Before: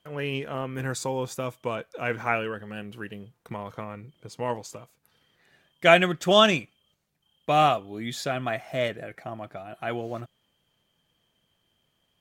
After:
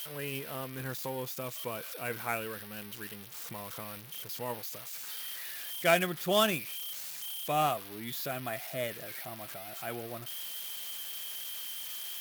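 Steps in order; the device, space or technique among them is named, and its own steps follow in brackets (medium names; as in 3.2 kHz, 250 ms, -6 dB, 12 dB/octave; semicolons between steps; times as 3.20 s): budget class-D amplifier (dead-time distortion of 0.069 ms; zero-crossing glitches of -19 dBFS); trim -8.5 dB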